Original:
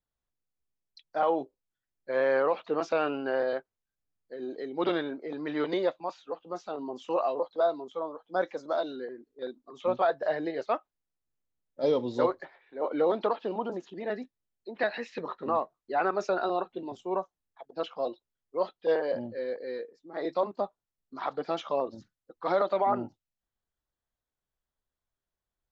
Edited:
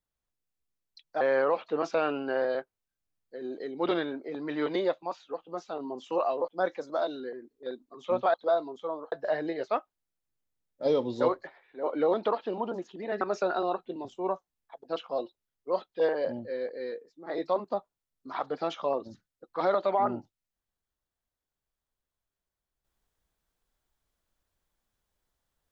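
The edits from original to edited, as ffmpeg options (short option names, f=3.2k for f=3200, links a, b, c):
-filter_complex "[0:a]asplit=6[a][b][c][d][e][f];[a]atrim=end=1.212[g];[b]atrim=start=2.188:end=7.462[h];[c]atrim=start=8.238:end=10.102[i];[d]atrim=start=7.458:end=8.242[j];[e]atrim=start=10.098:end=14.192[k];[f]atrim=start=16.078[l];[g][h]acrossfade=d=0.004:c1=hsin:c2=hsin[m];[m][i]acrossfade=d=0.004:c1=hsin:c2=hsin[n];[n][j]acrossfade=d=0.004:c1=hsin:c2=hsin[o];[o][k]acrossfade=d=0.004:c1=hsin:c2=hsin[p];[p][l]acrossfade=d=0.004:c1=hsin:c2=hsin"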